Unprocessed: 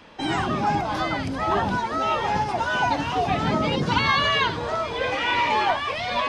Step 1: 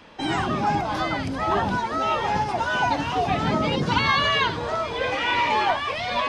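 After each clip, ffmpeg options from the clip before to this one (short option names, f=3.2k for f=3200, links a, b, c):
-af anull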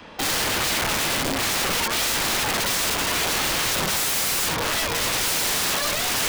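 -filter_complex "[0:a]acrossover=split=280|440|2800[a][b][c][d];[b]alimiter=level_in=11dB:limit=-24dB:level=0:latency=1:release=344,volume=-11dB[e];[a][e][c][d]amix=inputs=4:normalize=0,aeval=exprs='(mod(15.8*val(0)+1,2)-1)/15.8':c=same,volume=5.5dB"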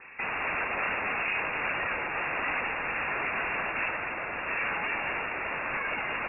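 -filter_complex "[0:a]asplit=2[a][b];[b]aecho=0:1:240:0.355[c];[a][c]amix=inputs=2:normalize=0,lowpass=f=2.4k:t=q:w=0.5098,lowpass=f=2.4k:t=q:w=0.6013,lowpass=f=2.4k:t=q:w=0.9,lowpass=f=2.4k:t=q:w=2.563,afreqshift=-2800,volume=-4.5dB"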